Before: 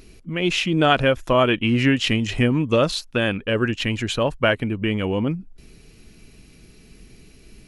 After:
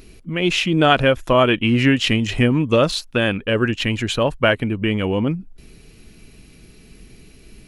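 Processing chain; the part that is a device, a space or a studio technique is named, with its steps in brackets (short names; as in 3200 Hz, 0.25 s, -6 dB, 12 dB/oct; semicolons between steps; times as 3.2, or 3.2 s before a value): exciter from parts (in parallel at -12 dB: HPF 3700 Hz 24 dB/oct + soft clip -38 dBFS, distortion -4 dB + HPF 4500 Hz); on the sum: gain +2.5 dB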